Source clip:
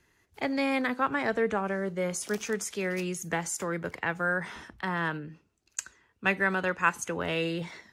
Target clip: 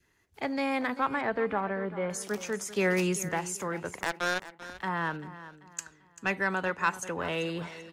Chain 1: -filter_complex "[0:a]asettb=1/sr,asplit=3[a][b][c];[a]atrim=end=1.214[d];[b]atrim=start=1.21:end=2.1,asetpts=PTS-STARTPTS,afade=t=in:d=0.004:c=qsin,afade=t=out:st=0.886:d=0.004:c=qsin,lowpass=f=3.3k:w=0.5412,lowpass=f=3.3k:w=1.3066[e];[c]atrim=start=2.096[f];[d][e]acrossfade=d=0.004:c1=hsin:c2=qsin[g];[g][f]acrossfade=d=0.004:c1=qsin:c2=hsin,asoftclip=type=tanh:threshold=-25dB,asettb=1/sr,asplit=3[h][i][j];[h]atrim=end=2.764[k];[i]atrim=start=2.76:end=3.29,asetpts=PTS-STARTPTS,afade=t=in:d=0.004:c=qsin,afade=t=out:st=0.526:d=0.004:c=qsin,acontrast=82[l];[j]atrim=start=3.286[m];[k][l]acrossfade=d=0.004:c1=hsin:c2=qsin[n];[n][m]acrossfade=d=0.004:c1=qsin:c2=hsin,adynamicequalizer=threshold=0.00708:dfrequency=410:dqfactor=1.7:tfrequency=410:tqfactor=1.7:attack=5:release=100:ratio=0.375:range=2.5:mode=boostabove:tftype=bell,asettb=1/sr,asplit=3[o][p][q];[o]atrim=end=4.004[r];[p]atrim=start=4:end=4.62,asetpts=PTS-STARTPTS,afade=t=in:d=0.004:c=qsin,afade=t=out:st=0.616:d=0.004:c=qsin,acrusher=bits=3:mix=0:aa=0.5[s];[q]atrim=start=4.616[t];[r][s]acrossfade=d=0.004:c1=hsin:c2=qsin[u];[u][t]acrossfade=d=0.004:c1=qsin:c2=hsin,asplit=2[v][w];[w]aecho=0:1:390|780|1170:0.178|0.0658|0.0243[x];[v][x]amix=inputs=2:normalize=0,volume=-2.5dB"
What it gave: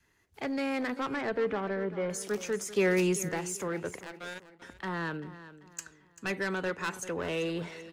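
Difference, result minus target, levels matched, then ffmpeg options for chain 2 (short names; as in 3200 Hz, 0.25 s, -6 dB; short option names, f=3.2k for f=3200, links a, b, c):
soft clip: distortion +10 dB; 1000 Hz band -5.0 dB
-filter_complex "[0:a]asettb=1/sr,asplit=3[a][b][c];[a]atrim=end=1.214[d];[b]atrim=start=1.21:end=2.1,asetpts=PTS-STARTPTS,afade=t=in:d=0.004:c=qsin,afade=t=out:st=0.886:d=0.004:c=qsin,lowpass=f=3.3k:w=0.5412,lowpass=f=3.3k:w=1.3066[e];[c]atrim=start=2.096[f];[d][e]acrossfade=d=0.004:c1=hsin:c2=qsin[g];[g][f]acrossfade=d=0.004:c1=qsin:c2=hsin,asoftclip=type=tanh:threshold=-15dB,asettb=1/sr,asplit=3[h][i][j];[h]atrim=end=2.764[k];[i]atrim=start=2.76:end=3.29,asetpts=PTS-STARTPTS,afade=t=in:d=0.004:c=qsin,afade=t=out:st=0.526:d=0.004:c=qsin,acontrast=82[l];[j]atrim=start=3.286[m];[k][l]acrossfade=d=0.004:c1=hsin:c2=qsin[n];[n][m]acrossfade=d=0.004:c1=qsin:c2=hsin,adynamicequalizer=threshold=0.00708:dfrequency=910:dqfactor=1.7:tfrequency=910:tqfactor=1.7:attack=5:release=100:ratio=0.375:range=2.5:mode=boostabove:tftype=bell,asettb=1/sr,asplit=3[o][p][q];[o]atrim=end=4.004[r];[p]atrim=start=4:end=4.62,asetpts=PTS-STARTPTS,afade=t=in:d=0.004:c=qsin,afade=t=out:st=0.616:d=0.004:c=qsin,acrusher=bits=3:mix=0:aa=0.5[s];[q]atrim=start=4.616[t];[r][s]acrossfade=d=0.004:c1=hsin:c2=qsin[u];[u][t]acrossfade=d=0.004:c1=qsin:c2=hsin,asplit=2[v][w];[w]aecho=0:1:390|780|1170:0.178|0.0658|0.0243[x];[v][x]amix=inputs=2:normalize=0,volume=-2.5dB"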